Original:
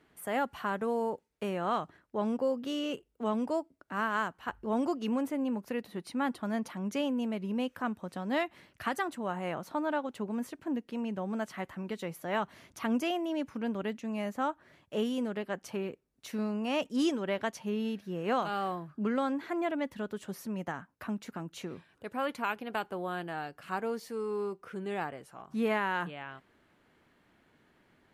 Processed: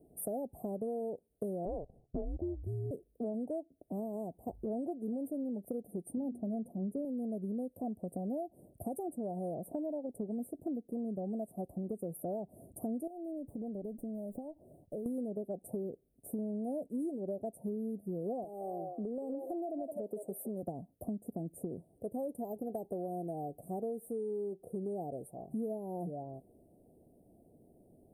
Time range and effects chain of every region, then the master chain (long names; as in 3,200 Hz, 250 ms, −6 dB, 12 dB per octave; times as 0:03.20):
0:01.65–0:02.91: high-shelf EQ 6,900 Hz −11.5 dB + frequency shifter −180 Hz
0:06.17–0:07.05: tilt shelving filter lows +5.5 dB, about 830 Hz + mains-hum notches 60/120/180/240/300/360/420 Hz
0:13.07–0:15.06: downward compressor 16 to 1, threshold −41 dBFS + windowed peak hold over 3 samples
0:18.44–0:20.63: high-pass filter 300 Hz + echo through a band-pass that steps 164 ms, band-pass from 620 Hz, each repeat 1.4 octaves, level −6.5 dB + downward compressor 4 to 1, threshold −35 dBFS
whole clip: Chebyshev band-stop filter 710–8,800 Hz, order 5; downward compressor 6 to 1, threshold −42 dBFS; level +6.5 dB